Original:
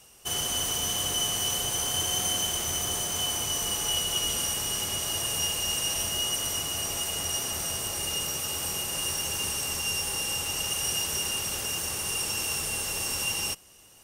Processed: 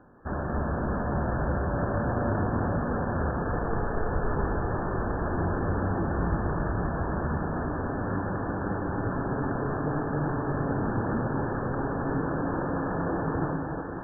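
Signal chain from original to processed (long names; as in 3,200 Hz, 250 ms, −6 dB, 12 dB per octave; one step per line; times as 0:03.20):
Butterworth high-pass 260 Hz 36 dB per octave
decimation without filtering 15×
linear-phase brick-wall low-pass 1,800 Hz
delay that swaps between a low-pass and a high-pass 274 ms, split 1,400 Hz, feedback 82%, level −4 dB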